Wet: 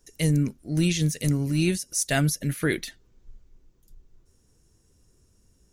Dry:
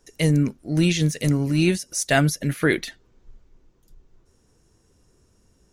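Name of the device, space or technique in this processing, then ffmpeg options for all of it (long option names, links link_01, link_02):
smiley-face EQ: -af "lowshelf=frequency=140:gain=5.5,equalizer=frequency=880:width_type=o:width=1.8:gain=-3,highshelf=frequency=6800:gain=9,volume=-5dB"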